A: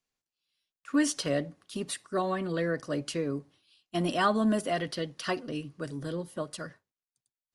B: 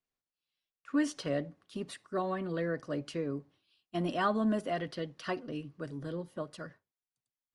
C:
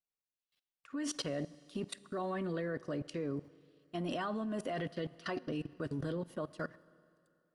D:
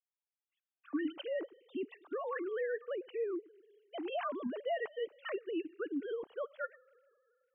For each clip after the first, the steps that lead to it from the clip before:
low-pass 2.6 kHz 6 dB/octave; trim -3.5 dB
level held to a coarse grid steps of 22 dB; Schroeder reverb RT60 2.6 s, combs from 27 ms, DRR 19.5 dB; trim +7.5 dB
formants replaced by sine waves

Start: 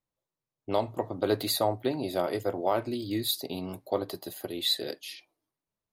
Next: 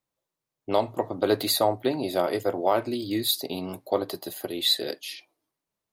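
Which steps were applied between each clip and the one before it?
bass shelf 110 Hz -9.5 dB; trim +4.5 dB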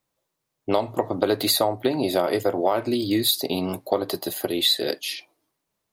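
compression, threshold -24 dBFS, peak gain reduction 8 dB; trim +7 dB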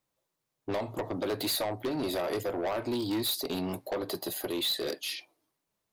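saturation -22.5 dBFS, distortion -8 dB; trim -4 dB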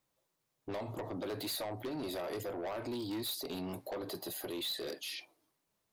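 peak limiter -35.5 dBFS, peak gain reduction 9 dB; trim +1 dB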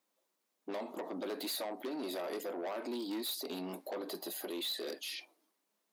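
brick-wall FIR high-pass 180 Hz

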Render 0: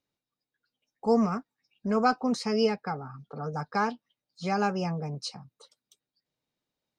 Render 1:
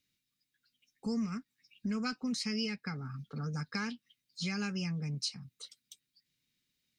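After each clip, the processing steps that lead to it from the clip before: FFT filter 230 Hz 0 dB, 760 Hz -20 dB, 2.1 kHz +5 dB; compression 3:1, threshold -38 dBFS, peak gain reduction 12 dB; trim +3 dB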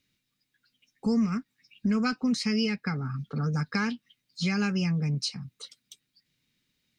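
treble shelf 3.7 kHz -7.5 dB; trim +9 dB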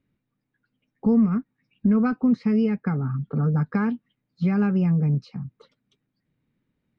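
low-pass 1 kHz 12 dB/octave; trim +6.5 dB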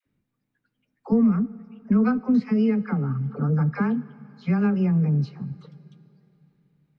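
phase dispersion lows, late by 63 ms, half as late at 630 Hz; reverberation RT60 3.4 s, pre-delay 23 ms, DRR 18.5 dB

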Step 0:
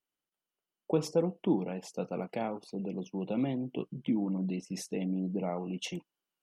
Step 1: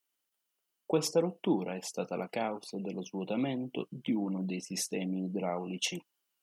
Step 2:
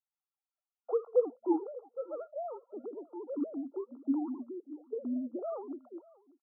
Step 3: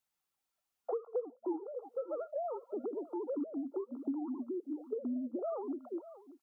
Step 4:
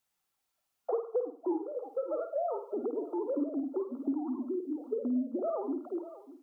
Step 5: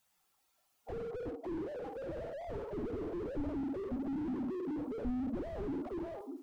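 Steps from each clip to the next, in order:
tilt EQ +2 dB/octave; trim +2.5 dB
formants replaced by sine waves; delay 589 ms -23 dB; FFT band-pass 230–1400 Hz; trim -1.5 dB
compression 5:1, threshold -44 dBFS, peak gain reduction 20.5 dB; trim +8.5 dB
flutter echo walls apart 8.9 m, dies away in 0.39 s; trim +4 dB
coarse spectral quantiser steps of 15 dB; on a send at -15.5 dB: reverberation, pre-delay 33 ms; on the sum: slew-rate limiter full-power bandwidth 2.3 Hz; trim +6.5 dB

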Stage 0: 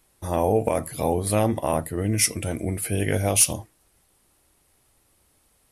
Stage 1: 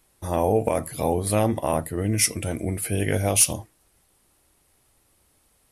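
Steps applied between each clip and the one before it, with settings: no audible change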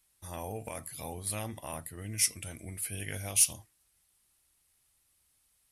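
amplifier tone stack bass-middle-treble 5-5-5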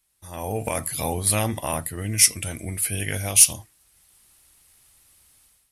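level rider gain up to 14.5 dB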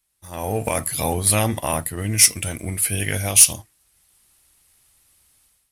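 waveshaping leveller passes 1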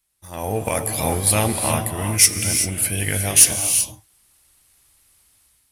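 gated-style reverb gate 410 ms rising, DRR 5 dB

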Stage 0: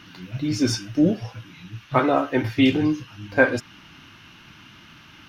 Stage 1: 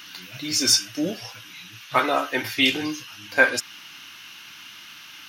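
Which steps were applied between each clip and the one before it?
tilt EQ +4.5 dB/octave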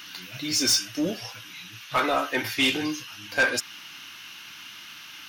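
saturation -15.5 dBFS, distortion -11 dB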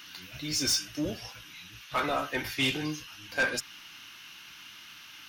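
octave divider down 1 oct, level -5 dB; trim -5.5 dB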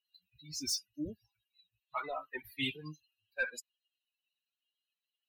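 expander on every frequency bin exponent 3; trim -4 dB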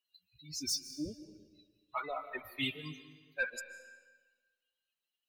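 reverberation RT60 1.4 s, pre-delay 105 ms, DRR 12 dB

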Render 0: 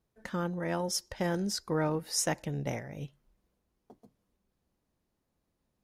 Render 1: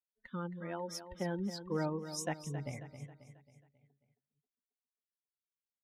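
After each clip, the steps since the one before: expander on every frequency bin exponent 2; treble shelf 4.5 kHz -8.5 dB; feedback delay 270 ms, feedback 47%, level -11 dB; trim -3 dB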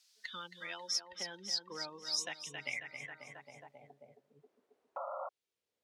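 painted sound noise, 4.96–5.29 s, 530–1400 Hz -44 dBFS; band-pass sweep 4.9 kHz -> 450 Hz, 2.06–4.34 s; three bands compressed up and down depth 70%; trim +15 dB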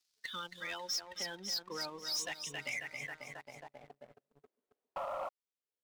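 waveshaping leveller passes 3; trim -7.5 dB

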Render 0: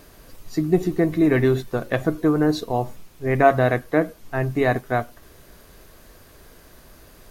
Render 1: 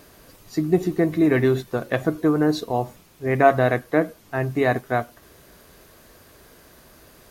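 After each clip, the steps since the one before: high-pass 89 Hz 6 dB/octave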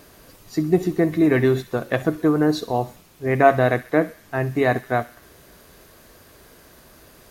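feedback echo behind a high-pass 65 ms, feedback 58%, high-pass 1.8 kHz, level -15 dB; trim +1 dB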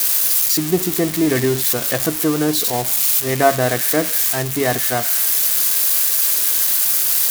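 zero-crossing glitches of -10 dBFS

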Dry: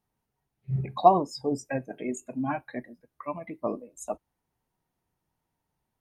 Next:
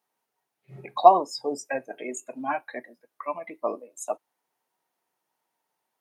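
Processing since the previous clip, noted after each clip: high-pass 480 Hz 12 dB/octave; trim +4.5 dB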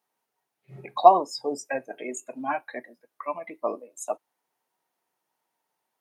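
no audible change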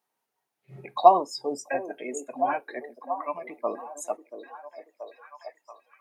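repeats whose band climbs or falls 682 ms, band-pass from 380 Hz, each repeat 0.7 oct, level -7.5 dB; trim -1 dB

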